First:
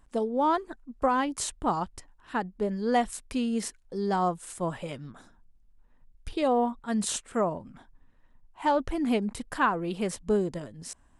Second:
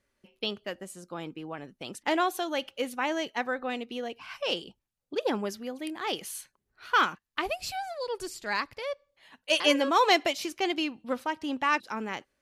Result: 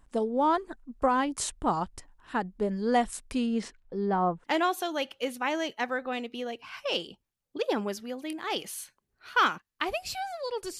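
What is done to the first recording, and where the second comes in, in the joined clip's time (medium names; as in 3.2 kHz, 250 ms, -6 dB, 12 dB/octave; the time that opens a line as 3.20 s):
first
3.46–4.44 s: low-pass 5.8 kHz -> 1.3 kHz
4.44 s: go over to second from 2.01 s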